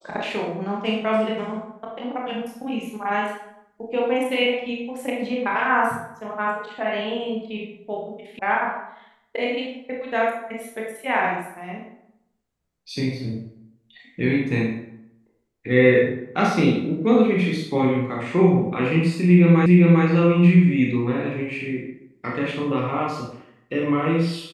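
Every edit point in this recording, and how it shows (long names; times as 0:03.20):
0:08.39: cut off before it has died away
0:19.66: the same again, the last 0.4 s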